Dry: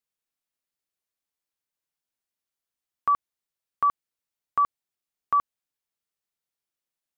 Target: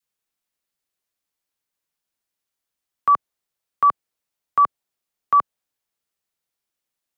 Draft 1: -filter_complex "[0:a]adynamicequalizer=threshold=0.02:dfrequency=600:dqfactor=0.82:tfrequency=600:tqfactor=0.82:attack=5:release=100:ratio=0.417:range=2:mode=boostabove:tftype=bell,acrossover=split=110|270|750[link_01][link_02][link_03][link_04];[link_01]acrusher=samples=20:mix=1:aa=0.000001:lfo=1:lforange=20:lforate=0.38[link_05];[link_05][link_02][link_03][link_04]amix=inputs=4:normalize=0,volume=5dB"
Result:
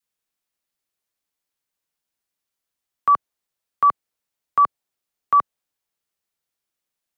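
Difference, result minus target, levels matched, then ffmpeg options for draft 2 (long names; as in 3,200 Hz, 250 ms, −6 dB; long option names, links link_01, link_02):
sample-and-hold swept by an LFO: distortion +13 dB
-filter_complex "[0:a]adynamicequalizer=threshold=0.02:dfrequency=600:dqfactor=0.82:tfrequency=600:tqfactor=0.82:attack=5:release=100:ratio=0.417:range=2:mode=boostabove:tftype=bell,acrossover=split=110|270|750[link_01][link_02][link_03][link_04];[link_01]acrusher=samples=5:mix=1:aa=0.000001:lfo=1:lforange=5:lforate=0.38[link_05];[link_05][link_02][link_03][link_04]amix=inputs=4:normalize=0,volume=5dB"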